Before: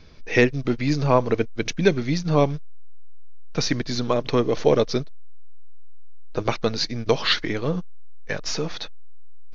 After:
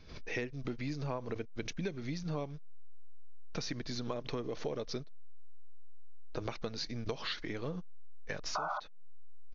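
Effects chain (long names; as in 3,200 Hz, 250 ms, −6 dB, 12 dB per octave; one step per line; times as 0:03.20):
sound drawn into the spectrogram noise, 0:08.55–0:08.80, 580–1,500 Hz −13 dBFS
downward compressor 6 to 1, threshold −27 dBFS, peak gain reduction 16.5 dB
downsampling to 16,000 Hz
background raised ahead of every attack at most 100 dB per second
level −8 dB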